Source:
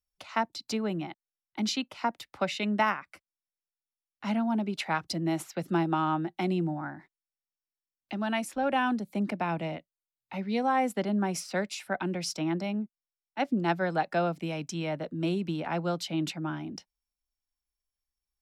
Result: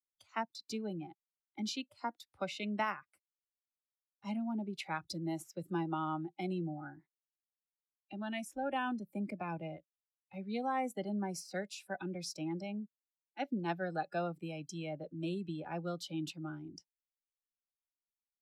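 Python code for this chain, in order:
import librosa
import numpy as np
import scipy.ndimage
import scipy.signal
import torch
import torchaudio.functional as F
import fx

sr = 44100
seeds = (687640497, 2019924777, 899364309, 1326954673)

y = fx.noise_reduce_blind(x, sr, reduce_db=16)
y = y * librosa.db_to_amplitude(-8.5)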